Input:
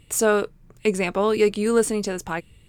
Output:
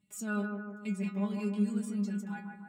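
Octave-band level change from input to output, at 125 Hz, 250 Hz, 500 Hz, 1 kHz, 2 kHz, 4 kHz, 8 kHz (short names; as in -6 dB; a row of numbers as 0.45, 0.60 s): -3.5 dB, -4.5 dB, -22.5 dB, -17.0 dB, -14.0 dB, under -20 dB, -19.5 dB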